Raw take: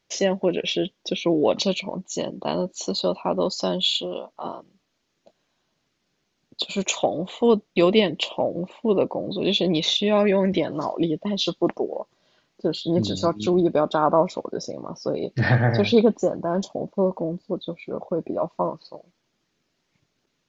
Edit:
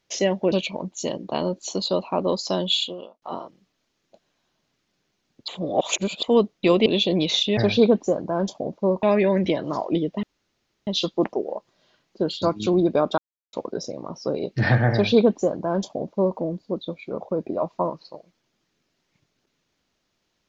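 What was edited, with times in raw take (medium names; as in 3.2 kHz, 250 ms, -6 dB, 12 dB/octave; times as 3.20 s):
0.52–1.65 s: delete
3.88–4.35 s: fade out
6.61–7.36 s: reverse
7.99–9.40 s: delete
11.31 s: insert room tone 0.64 s
12.86–13.22 s: delete
13.98–14.33 s: mute
15.72–17.18 s: copy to 10.11 s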